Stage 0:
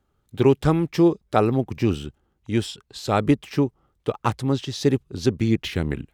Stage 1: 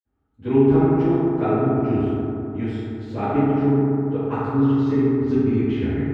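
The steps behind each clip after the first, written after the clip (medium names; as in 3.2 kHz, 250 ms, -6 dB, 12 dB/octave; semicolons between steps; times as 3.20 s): high-order bell 6.6 kHz -10.5 dB; reverberation RT60 3.0 s, pre-delay 47 ms; trim +3 dB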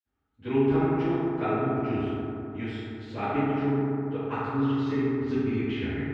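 peaking EQ 2.7 kHz +10.5 dB 2.6 oct; trim -8.5 dB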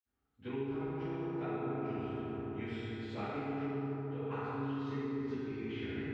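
compression, threshold -32 dBFS, peak gain reduction 13.5 dB; plate-style reverb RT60 2.1 s, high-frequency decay 0.85×, DRR -1.5 dB; trim -6.5 dB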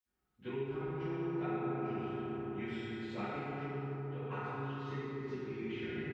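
comb 5.5 ms, depth 59%; trim -1 dB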